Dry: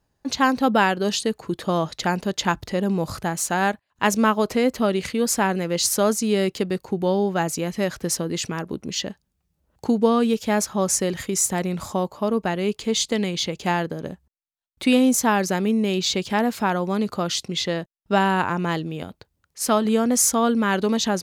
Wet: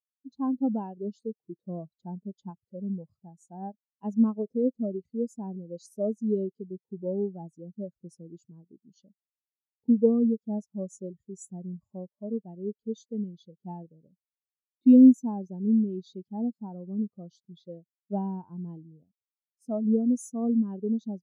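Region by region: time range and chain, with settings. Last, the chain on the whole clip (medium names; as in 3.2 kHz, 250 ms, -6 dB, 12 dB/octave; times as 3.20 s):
2.50–3.46 s: high-pass 120 Hz 6 dB/octave + peaking EQ 300 Hz -2.5 dB 0.42 oct
whole clip: peaking EQ 1.7 kHz -11 dB 1.5 oct; spectral contrast expander 2.5:1; trim -1.5 dB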